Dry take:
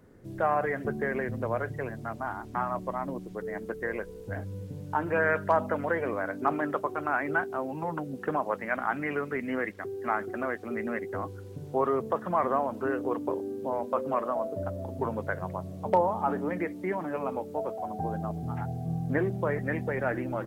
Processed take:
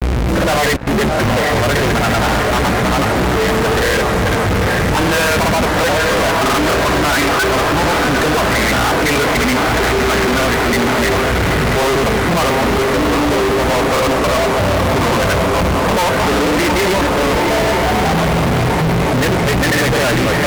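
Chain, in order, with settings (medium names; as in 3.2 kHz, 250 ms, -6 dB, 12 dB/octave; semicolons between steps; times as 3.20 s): peaking EQ 2.2 kHz +7.5 dB 0.4 oct; mains buzz 60 Hz, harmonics 40, -41 dBFS -5 dB/octave; granulator; trance gate "xxxxxxx.xx.xx.x" 138 bpm -60 dB; echo that smears into a reverb 808 ms, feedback 71%, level -11.5 dB; fuzz box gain 52 dB, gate -57 dBFS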